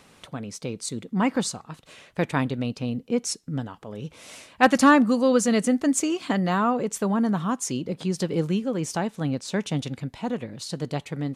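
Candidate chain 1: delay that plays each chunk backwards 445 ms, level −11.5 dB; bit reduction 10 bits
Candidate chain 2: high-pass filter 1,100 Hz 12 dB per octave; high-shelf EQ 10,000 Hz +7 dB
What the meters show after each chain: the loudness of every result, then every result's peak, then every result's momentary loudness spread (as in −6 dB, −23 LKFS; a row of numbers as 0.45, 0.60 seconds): −24.5, −30.5 LKFS; −3.5, −5.0 dBFS; 15, 18 LU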